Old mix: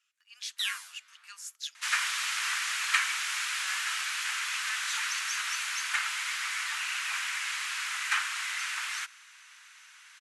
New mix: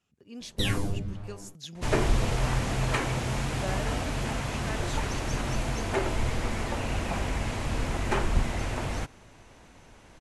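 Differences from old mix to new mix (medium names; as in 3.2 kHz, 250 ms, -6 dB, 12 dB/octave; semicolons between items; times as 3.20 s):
speech -5.0 dB; second sound -6.5 dB; master: remove steep high-pass 1.3 kHz 36 dB/octave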